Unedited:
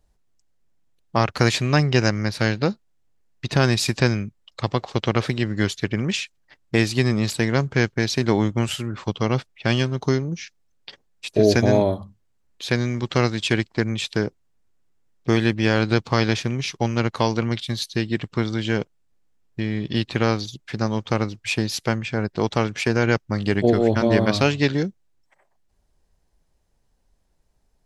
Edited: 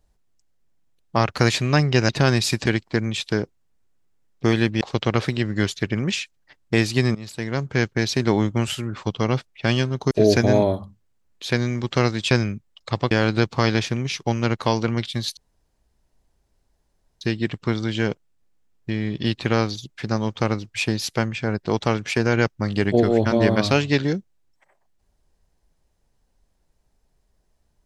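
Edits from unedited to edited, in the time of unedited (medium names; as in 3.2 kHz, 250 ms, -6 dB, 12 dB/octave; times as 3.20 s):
2.09–3.45 s: delete
4.02–4.82 s: swap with 13.50–15.65 s
7.16–7.92 s: fade in linear, from -18.5 dB
10.12–11.30 s: delete
17.91 s: insert room tone 1.84 s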